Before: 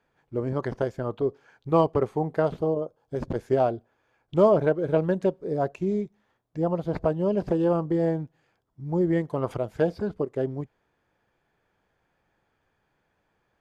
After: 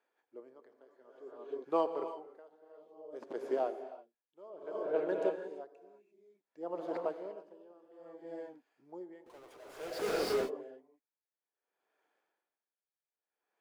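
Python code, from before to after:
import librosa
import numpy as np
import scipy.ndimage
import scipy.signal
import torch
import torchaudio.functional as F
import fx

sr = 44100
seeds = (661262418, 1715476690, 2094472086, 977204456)

y = scipy.signal.sosfilt(scipy.signal.butter(4, 320.0, 'highpass', fs=sr, output='sos'), x)
y = fx.tilt_eq(y, sr, slope=-1.5, at=(4.5, 4.96))
y = fx.power_curve(y, sr, exponent=0.35, at=(9.26, 10.15))
y = fx.rev_gated(y, sr, seeds[0], gate_ms=370, shape='rising', drr_db=0.5)
y = y * 10.0 ** (-27 * (0.5 - 0.5 * np.cos(2.0 * np.pi * 0.58 * np.arange(len(y)) / sr)) / 20.0)
y = y * librosa.db_to_amplitude(-8.5)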